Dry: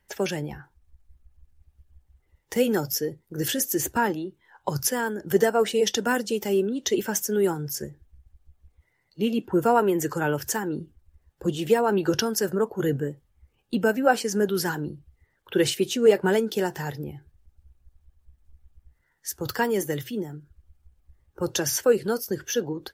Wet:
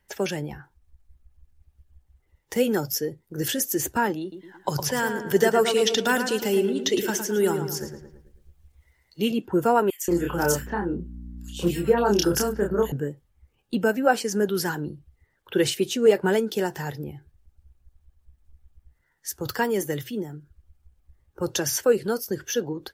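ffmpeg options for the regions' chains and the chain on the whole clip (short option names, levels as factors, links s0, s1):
-filter_complex "[0:a]asettb=1/sr,asplit=3[s0][s1][s2];[s0]atrim=end=4.214[s3];[s1]atrim=start=4.21:end=9.32,asetpts=PTS-STARTPTS,afade=t=in:d=0.004:c=qsin,afade=t=out:st=5.106:d=0.004:c=qsin,acrossover=split=4700[s4][s5];[s5]acompressor=threshold=0.0112:ratio=4:attack=1:release=60[s6];[s4][s6]amix=inputs=2:normalize=0,highshelf=f=2200:g=8,asplit=2[s7][s8];[s8]adelay=110,lowpass=f=3100:p=1,volume=0.447,asplit=2[s9][s10];[s10]adelay=110,lowpass=f=3100:p=1,volume=0.48,asplit=2[s11][s12];[s12]adelay=110,lowpass=f=3100:p=1,volume=0.48,asplit=2[s13][s14];[s14]adelay=110,lowpass=f=3100:p=1,volume=0.48,asplit=2[s15][s16];[s16]adelay=110,lowpass=f=3100:p=1,volume=0.48,asplit=2[s17][s18];[s18]adelay=110,lowpass=f=3100:p=1,volume=0.48[s19];[s7][s9][s11][s13][s15][s17][s19]amix=inputs=7:normalize=0,atrim=end_sample=225351[s20];[s2]atrim=start=9.316[s21];[s3][s20]acrossfade=d=0.004:c1=hsin:c2=qsin[s22];[s22][s21]acrossfade=d=0.004:c1=qsin:c2=hsin,asettb=1/sr,asplit=3[s23][s24][s25];[s23]atrim=end=9.904[s26];[s24]atrim=start=9.9:end=12.92,asetpts=PTS-STARTPTS,afade=t=in:d=0.004:c=qsin,afade=t=out:st=3.016:d=0.004:c=qsin,aeval=exprs='val(0)+0.0126*(sin(2*PI*60*n/s)+sin(2*PI*2*60*n/s)/2+sin(2*PI*3*60*n/s)/3+sin(2*PI*4*60*n/s)/4+sin(2*PI*5*60*n/s)/5)':c=same,asplit=2[s27][s28];[s28]adelay=29,volume=0.708[s29];[s27][s29]amix=inputs=2:normalize=0,atrim=end_sample=133182,acrossover=split=2300[s30][s31];[s30]adelay=180[s32];[s32][s31]amix=inputs=2:normalize=0,atrim=end_sample=133182[s33];[s25]atrim=start=12.916[s34];[s26][s33]acrossfade=d=0.004:c1=hsin:c2=qsin[s35];[s35][s34]acrossfade=d=0.004:c1=qsin:c2=hsin"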